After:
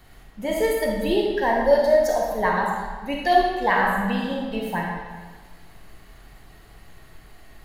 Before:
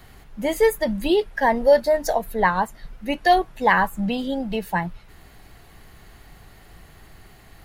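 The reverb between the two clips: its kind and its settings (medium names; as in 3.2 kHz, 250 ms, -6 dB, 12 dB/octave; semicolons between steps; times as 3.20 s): algorithmic reverb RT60 1.4 s, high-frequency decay 0.85×, pre-delay 0 ms, DRR -2 dB; trim -5 dB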